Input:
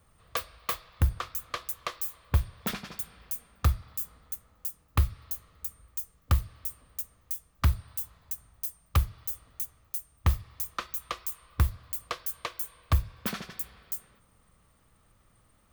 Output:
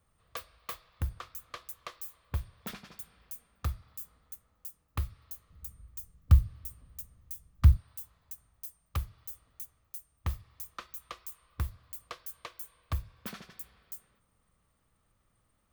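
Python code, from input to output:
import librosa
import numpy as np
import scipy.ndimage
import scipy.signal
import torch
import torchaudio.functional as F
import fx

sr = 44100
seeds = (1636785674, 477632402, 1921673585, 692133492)

y = fx.bass_treble(x, sr, bass_db=14, treble_db=1, at=(5.5, 7.77))
y = y * librosa.db_to_amplitude(-9.0)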